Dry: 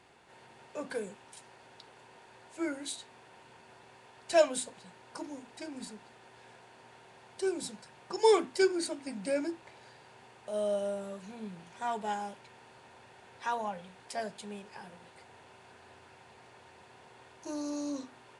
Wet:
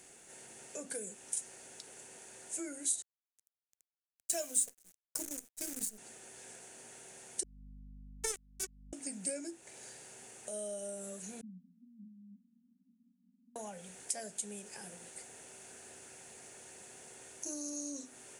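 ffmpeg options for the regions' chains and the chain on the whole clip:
ffmpeg -i in.wav -filter_complex "[0:a]asettb=1/sr,asplit=3[link_01][link_02][link_03];[link_01]atrim=end=3.024[link_04];[link_02]atrim=start=3.02:end=5.98,asetpts=PTS-STARTPTS,afade=type=in:duration=0.004:curve=qsin,afade=type=out:start_time=2.956:duration=0.004:curve=qsin,agate=range=-33dB:threshold=-44dB:ratio=3:release=100:detection=peak,acrusher=bits=8:dc=4:mix=0:aa=0.000001[link_05];[link_03]atrim=start=5.976[link_06];[link_04][link_05]acrossfade=duration=0.004:curve1=hsin:curve2=qsin[link_07];[link_07][link_06]acrossfade=duration=0.004:curve1=qsin:curve2=hsin,asettb=1/sr,asplit=3[link_08][link_09][link_10];[link_08]atrim=end=7.434[link_11];[link_09]atrim=start=7.43:end=8.93,asetpts=PTS-STARTPTS,afade=type=in:duration=0.004:curve=qsin,afade=type=out:start_time=1.496:duration=0.004:curve=qsin,highshelf=frequency=6000:gain=-3.5,acrusher=bits=2:mix=0:aa=0.5,aeval=exprs='val(0)+0.00316*(sin(2*PI*50*n/s)+sin(2*PI*2*50*n/s)/2+sin(2*PI*3*50*n/s)/3+sin(2*PI*4*50*n/s)/4+sin(2*PI*5*50*n/s)/5)':channel_layout=same[link_12];[link_10]atrim=start=8.926[link_13];[link_11][link_12]acrossfade=duration=0.004:curve1=hsin:curve2=qsin[link_14];[link_14][link_13]acrossfade=duration=0.004:curve1=qsin:curve2=hsin,asettb=1/sr,asplit=3[link_15][link_16][link_17];[link_15]atrim=end=11.414[link_18];[link_16]atrim=start=11.41:end=13.56,asetpts=PTS-STARTPTS,afade=type=in:duration=0.004:curve=qsin,afade=type=out:start_time=2.146:duration=0.004:curve=qsin,acompressor=threshold=-47dB:ratio=2.5:attack=3.2:release=140:knee=1:detection=peak,asuperpass=centerf=220:order=20:qfactor=2.3[link_19];[link_17]atrim=start=13.556[link_20];[link_18][link_19]acrossfade=duration=0.004:curve1=hsin:curve2=qsin[link_21];[link_21][link_20]acrossfade=duration=0.004:curve1=qsin:curve2=hsin,equalizer=frequency=100:width_type=o:width=0.67:gain=-11,equalizer=frequency=1000:width_type=o:width=0.67:gain=-12,equalizer=frequency=6300:width_type=o:width=0.67:gain=10,acompressor=threshold=-47dB:ratio=2.5,highshelf=frequency=6600:width_type=q:width=1.5:gain=13.5,volume=2dB" out.wav

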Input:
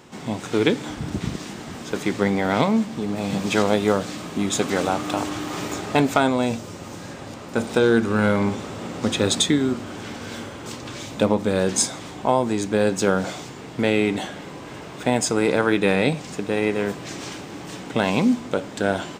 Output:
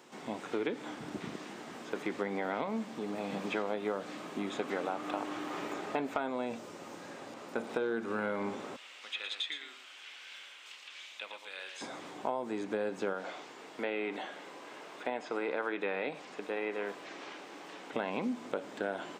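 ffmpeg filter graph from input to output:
ffmpeg -i in.wav -filter_complex "[0:a]asettb=1/sr,asplit=3[link_01][link_02][link_03];[link_01]atrim=end=8.764[link_04];[link_02]atrim=start=8.76:end=11.81,asetpts=PTS-STARTPTS,afade=type=in:duration=0.004:curve=qsin,afade=type=out:start_time=3.046:duration=0.004:curve=qsin,bandpass=frequency=2800:width_type=q:width=2,aemphasis=mode=production:type=riaa,aecho=1:1:114:0.422,atrim=end_sample=134505[link_05];[link_03]atrim=start=11.806[link_06];[link_04][link_05]acrossfade=duration=0.004:curve1=hsin:curve2=qsin[link_07];[link_07][link_06]acrossfade=duration=0.004:curve1=qsin:curve2=hsin,asettb=1/sr,asplit=3[link_08][link_09][link_10];[link_08]atrim=end=13.134[link_11];[link_09]atrim=start=13.13:end=17.93,asetpts=PTS-STARTPTS,afade=type=in:duration=0.004:curve=qsin,afade=type=out:start_time=4.796:duration=0.004:curve=qsin,highpass=frequency=440:poles=1,acrossover=split=5000[link_12][link_13];[link_13]acompressor=threshold=-53dB:ratio=4:attack=1:release=60[link_14];[link_12][link_14]amix=inputs=2:normalize=0[link_15];[link_10]atrim=start=17.926[link_16];[link_11][link_15]acrossfade=duration=0.004:curve1=hsin:curve2=qsin[link_17];[link_17][link_16]acrossfade=duration=0.004:curve1=qsin:curve2=hsin,acrossover=split=3000[link_18][link_19];[link_19]acompressor=threshold=-49dB:ratio=4:attack=1:release=60[link_20];[link_18][link_20]amix=inputs=2:normalize=0,highpass=290,acompressor=threshold=-23dB:ratio=4,volume=-7.5dB" out.wav

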